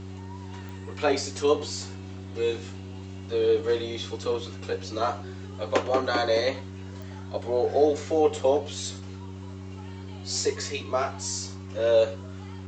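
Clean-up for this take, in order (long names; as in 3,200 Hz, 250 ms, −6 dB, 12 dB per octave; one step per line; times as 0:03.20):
click removal
hum removal 95.1 Hz, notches 4
echo removal 106 ms −18.5 dB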